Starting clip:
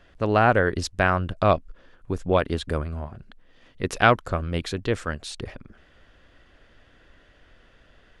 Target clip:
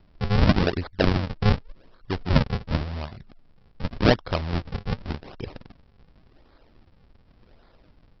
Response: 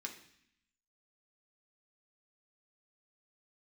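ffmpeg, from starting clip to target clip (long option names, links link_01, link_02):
-af "lowpass=3400,aresample=11025,acrusher=samples=20:mix=1:aa=0.000001:lfo=1:lforange=32:lforate=0.88,aresample=44100"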